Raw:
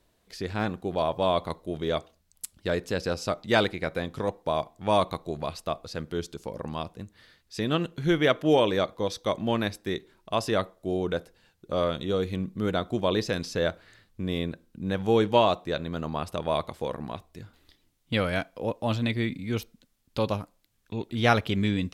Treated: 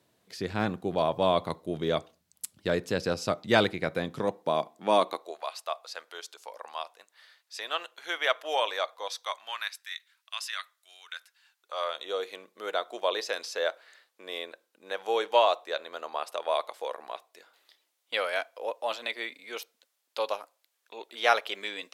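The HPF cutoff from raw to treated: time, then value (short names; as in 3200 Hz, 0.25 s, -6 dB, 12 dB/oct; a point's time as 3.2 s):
HPF 24 dB/oct
3.94 s 100 Hz
5.05 s 250 Hz
5.42 s 670 Hz
9.03 s 670 Hz
9.88 s 1500 Hz
11.17 s 1500 Hz
12.11 s 510 Hz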